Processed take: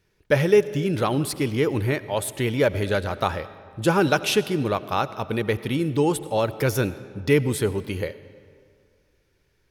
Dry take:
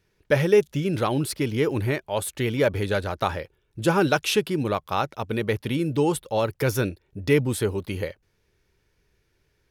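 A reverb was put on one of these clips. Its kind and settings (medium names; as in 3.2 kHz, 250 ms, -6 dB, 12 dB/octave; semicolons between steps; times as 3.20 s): algorithmic reverb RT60 2.1 s, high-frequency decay 0.7×, pre-delay 50 ms, DRR 15.5 dB; trim +1 dB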